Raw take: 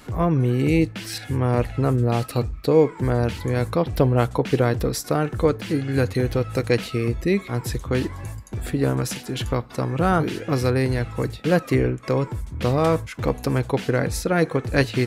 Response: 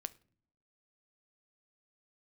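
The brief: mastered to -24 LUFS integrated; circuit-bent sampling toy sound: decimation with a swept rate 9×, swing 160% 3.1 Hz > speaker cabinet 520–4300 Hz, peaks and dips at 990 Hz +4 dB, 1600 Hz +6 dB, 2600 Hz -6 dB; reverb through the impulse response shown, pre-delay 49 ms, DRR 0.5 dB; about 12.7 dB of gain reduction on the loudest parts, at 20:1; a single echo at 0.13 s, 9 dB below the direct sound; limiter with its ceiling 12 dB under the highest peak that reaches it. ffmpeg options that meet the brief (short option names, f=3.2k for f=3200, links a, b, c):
-filter_complex "[0:a]acompressor=threshold=-25dB:ratio=20,alimiter=level_in=2dB:limit=-24dB:level=0:latency=1,volume=-2dB,aecho=1:1:130:0.355,asplit=2[a][b];[1:a]atrim=start_sample=2205,adelay=49[c];[b][c]afir=irnorm=-1:irlink=0,volume=2dB[d];[a][d]amix=inputs=2:normalize=0,acrusher=samples=9:mix=1:aa=0.000001:lfo=1:lforange=14.4:lforate=3.1,highpass=520,equalizer=f=990:t=q:w=4:g=4,equalizer=f=1.6k:t=q:w=4:g=6,equalizer=f=2.6k:t=q:w=4:g=-6,lowpass=f=4.3k:w=0.5412,lowpass=f=4.3k:w=1.3066,volume=14dB"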